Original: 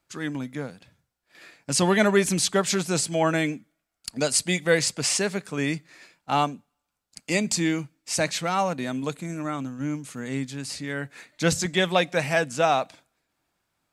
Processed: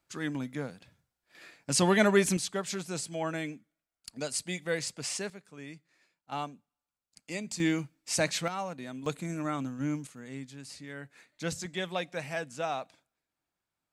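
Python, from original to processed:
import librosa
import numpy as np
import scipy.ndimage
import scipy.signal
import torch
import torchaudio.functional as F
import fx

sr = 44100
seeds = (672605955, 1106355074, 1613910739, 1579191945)

y = fx.gain(x, sr, db=fx.steps((0.0, -3.5), (2.37, -11.0), (5.3, -19.0), (6.32, -13.0), (7.6, -3.5), (8.48, -11.5), (9.06, -3.0), (10.07, -12.0)))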